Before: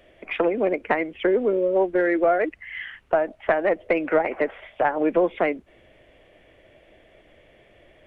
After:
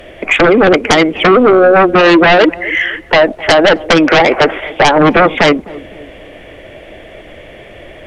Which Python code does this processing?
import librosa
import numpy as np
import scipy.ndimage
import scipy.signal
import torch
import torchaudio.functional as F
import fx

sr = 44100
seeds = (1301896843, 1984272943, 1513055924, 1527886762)

y = fx.fold_sine(x, sr, drive_db=14, ceiling_db=-5.5)
y = fx.echo_banded(y, sr, ms=257, feedback_pct=49, hz=340.0, wet_db=-17)
y = y * librosa.db_to_amplitude(2.5)